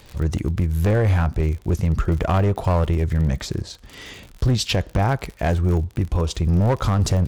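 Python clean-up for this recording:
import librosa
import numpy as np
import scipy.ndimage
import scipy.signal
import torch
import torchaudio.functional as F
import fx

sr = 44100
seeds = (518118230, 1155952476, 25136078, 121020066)

y = fx.fix_declip(x, sr, threshold_db=-13.5)
y = fx.fix_declick_ar(y, sr, threshold=6.5)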